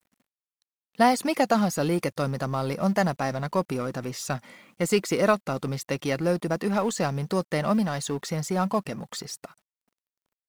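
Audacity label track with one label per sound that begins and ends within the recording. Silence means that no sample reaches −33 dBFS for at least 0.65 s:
0.990000	9.450000	sound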